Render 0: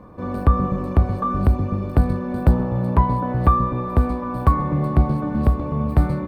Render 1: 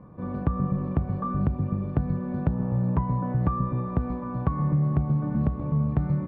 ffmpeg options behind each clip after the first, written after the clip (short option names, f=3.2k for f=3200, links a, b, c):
-af "lowpass=2.5k,equalizer=f=150:t=o:w=0.8:g=12,acompressor=threshold=-11dB:ratio=6,volume=-8.5dB"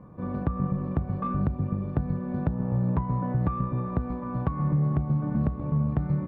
-filter_complex "[0:a]asplit=2[a][b];[b]alimiter=limit=-20dB:level=0:latency=1:release=378,volume=2dB[c];[a][c]amix=inputs=2:normalize=0,aeval=exprs='0.422*(cos(1*acos(clip(val(0)/0.422,-1,1)))-cos(1*PI/2))+0.00841*(cos(7*acos(clip(val(0)/0.422,-1,1)))-cos(7*PI/2))':c=same,volume=-6dB"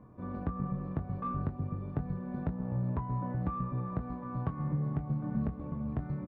-filter_complex "[0:a]areverse,acompressor=mode=upward:threshold=-37dB:ratio=2.5,areverse,flanger=delay=2.9:depth=5:regen=-63:speed=0.33:shape=sinusoidal,asplit=2[a][b];[b]adelay=23,volume=-9.5dB[c];[a][c]amix=inputs=2:normalize=0,volume=-3dB"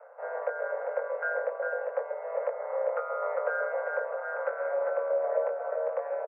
-af "aeval=exprs='val(0)*sin(2*PI*80*n/s)':c=same,aecho=1:1:400:0.562,highpass=f=150:t=q:w=0.5412,highpass=f=150:t=q:w=1.307,lowpass=f=2k:t=q:w=0.5176,lowpass=f=2k:t=q:w=0.7071,lowpass=f=2k:t=q:w=1.932,afreqshift=330,volume=8dB"